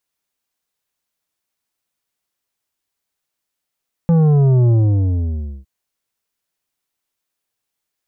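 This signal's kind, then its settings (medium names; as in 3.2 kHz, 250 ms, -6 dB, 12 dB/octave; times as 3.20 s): sub drop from 170 Hz, over 1.56 s, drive 9 dB, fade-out 0.95 s, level -10.5 dB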